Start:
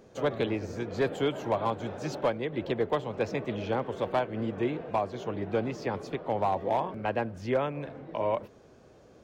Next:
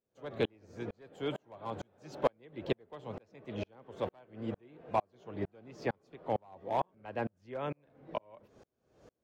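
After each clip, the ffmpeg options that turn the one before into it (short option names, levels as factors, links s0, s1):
-af "aeval=exprs='val(0)*pow(10,-40*if(lt(mod(-2.2*n/s,1),2*abs(-2.2)/1000),1-mod(-2.2*n/s,1)/(2*abs(-2.2)/1000),(mod(-2.2*n/s,1)-2*abs(-2.2)/1000)/(1-2*abs(-2.2)/1000))/20)':c=same,volume=1.12"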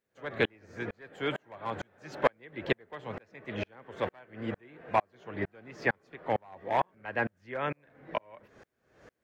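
-af "equalizer=f=1800:w=1.4:g=13,volume=1.26"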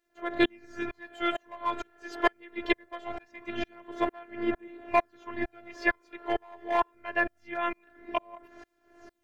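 -af "afftfilt=real='hypot(re,im)*cos(PI*b)':imag='0':win_size=512:overlap=0.75,aphaser=in_gain=1:out_gain=1:delay=2.3:decay=0.37:speed=0.23:type=sinusoidal,volume=2.11"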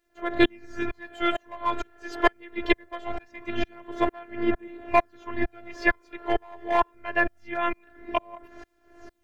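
-af "lowshelf=f=110:g=8.5,volume=1.5"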